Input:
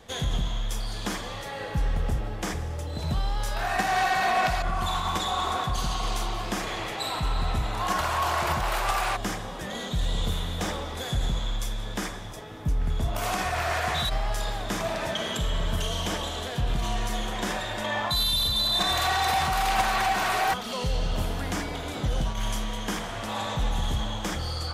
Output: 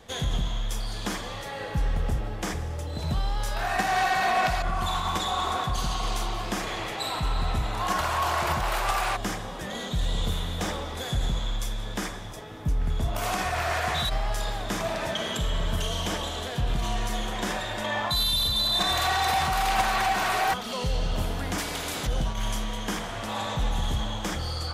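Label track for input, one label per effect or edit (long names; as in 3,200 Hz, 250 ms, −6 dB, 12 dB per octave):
21.580000	22.070000	every bin compressed towards the loudest bin 2 to 1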